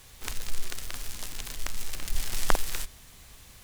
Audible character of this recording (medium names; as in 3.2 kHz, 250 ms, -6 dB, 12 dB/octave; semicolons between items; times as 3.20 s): noise floor -52 dBFS; spectral tilt -2.0 dB/octave